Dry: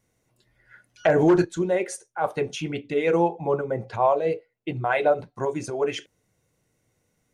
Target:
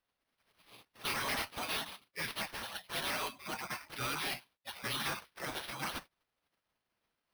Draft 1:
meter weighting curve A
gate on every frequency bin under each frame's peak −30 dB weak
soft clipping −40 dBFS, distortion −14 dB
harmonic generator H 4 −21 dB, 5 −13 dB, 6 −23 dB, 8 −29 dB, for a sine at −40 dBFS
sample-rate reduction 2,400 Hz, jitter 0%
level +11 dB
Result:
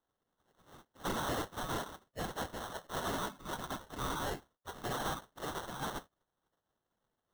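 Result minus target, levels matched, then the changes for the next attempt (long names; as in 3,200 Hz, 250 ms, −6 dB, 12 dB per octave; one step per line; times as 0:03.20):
sample-rate reduction: distortion +16 dB
change: sample-rate reduction 7,200 Hz, jitter 0%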